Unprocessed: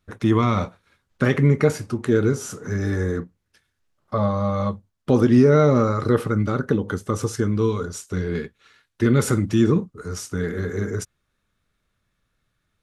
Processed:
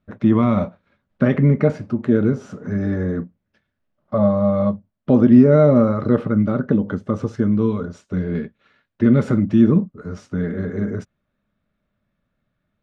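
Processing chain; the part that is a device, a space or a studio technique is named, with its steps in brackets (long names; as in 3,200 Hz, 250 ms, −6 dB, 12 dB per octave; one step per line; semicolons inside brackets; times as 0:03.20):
inside a cardboard box (low-pass filter 3,000 Hz 12 dB per octave; hollow resonant body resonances 210/590 Hz, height 11 dB, ringing for 25 ms)
level −3.5 dB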